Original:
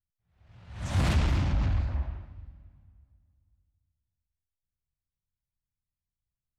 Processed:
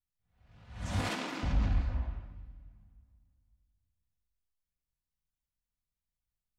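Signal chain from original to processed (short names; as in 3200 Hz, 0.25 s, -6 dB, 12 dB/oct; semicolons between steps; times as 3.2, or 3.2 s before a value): 0.99–1.43 HPF 260 Hz 24 dB/oct; reverb, pre-delay 4 ms, DRR 4 dB; gain -4 dB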